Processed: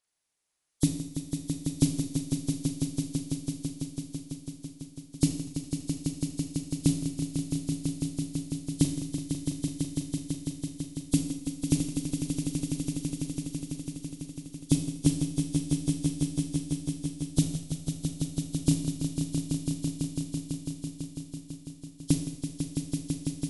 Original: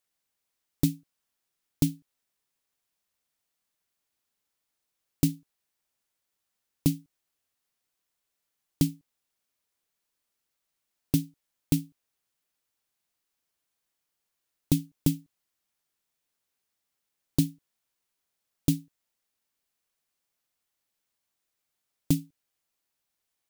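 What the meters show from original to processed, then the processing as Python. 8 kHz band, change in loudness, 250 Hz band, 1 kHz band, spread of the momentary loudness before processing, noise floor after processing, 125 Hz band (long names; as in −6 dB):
+8.0 dB, −2.0 dB, +4.5 dB, +5.0 dB, 5 LU, −51 dBFS, +4.5 dB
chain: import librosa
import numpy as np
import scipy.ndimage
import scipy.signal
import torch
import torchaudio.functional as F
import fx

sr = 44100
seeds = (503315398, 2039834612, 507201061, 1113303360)

y = fx.freq_compress(x, sr, knee_hz=3000.0, ratio=1.5)
y = fx.echo_swell(y, sr, ms=166, loudest=5, wet_db=-7.5)
y = fx.rev_schroeder(y, sr, rt60_s=0.79, comb_ms=27, drr_db=6.5)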